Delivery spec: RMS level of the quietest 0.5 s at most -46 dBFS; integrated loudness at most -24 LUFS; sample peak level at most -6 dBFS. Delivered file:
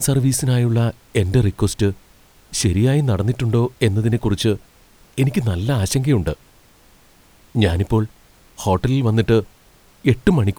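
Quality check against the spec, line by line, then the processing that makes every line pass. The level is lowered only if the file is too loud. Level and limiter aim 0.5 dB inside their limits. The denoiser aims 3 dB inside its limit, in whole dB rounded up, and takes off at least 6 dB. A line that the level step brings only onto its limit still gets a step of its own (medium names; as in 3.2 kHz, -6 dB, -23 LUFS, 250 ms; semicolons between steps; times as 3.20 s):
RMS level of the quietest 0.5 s -51 dBFS: pass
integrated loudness -19.0 LUFS: fail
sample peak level -1.5 dBFS: fail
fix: trim -5.5 dB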